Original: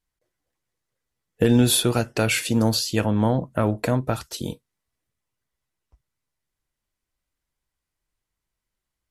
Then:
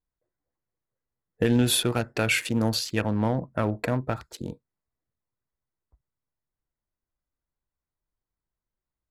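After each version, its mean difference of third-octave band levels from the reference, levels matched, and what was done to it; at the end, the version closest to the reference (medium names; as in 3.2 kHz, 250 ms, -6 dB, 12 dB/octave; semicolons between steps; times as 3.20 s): 2.0 dB: local Wiener filter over 15 samples; dynamic bell 2.1 kHz, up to +6 dB, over -41 dBFS, Q 0.99; trim -4.5 dB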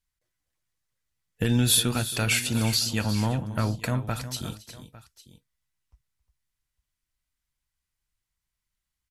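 6.5 dB: peaking EQ 450 Hz -11.5 dB 2.2 oct; on a send: multi-tap echo 271/358/853 ms -18.5/-12.5/-19 dB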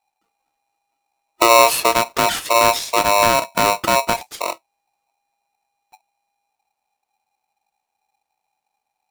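14.0 dB: bass shelf 370 Hz +9 dB; polarity switched at an audio rate 810 Hz; trim -1 dB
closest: first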